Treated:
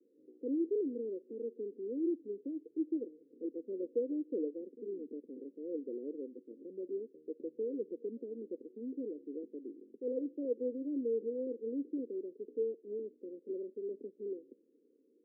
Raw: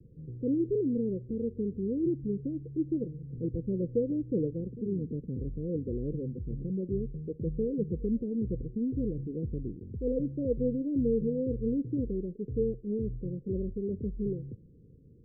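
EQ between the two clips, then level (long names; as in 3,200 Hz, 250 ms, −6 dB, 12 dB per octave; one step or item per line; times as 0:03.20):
Butterworth high-pass 270 Hz 48 dB per octave
resonant band-pass 350 Hz, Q 0.53
−4.0 dB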